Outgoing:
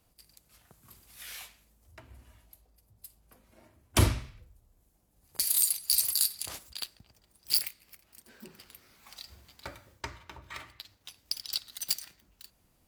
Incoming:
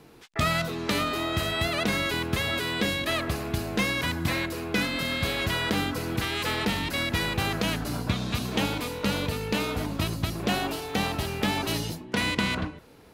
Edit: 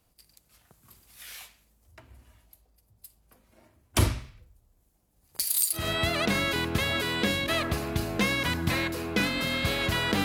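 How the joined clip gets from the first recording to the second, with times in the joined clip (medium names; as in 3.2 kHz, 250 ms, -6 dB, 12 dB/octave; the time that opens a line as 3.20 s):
outgoing
5.80 s: go over to incoming from 1.38 s, crossfade 0.16 s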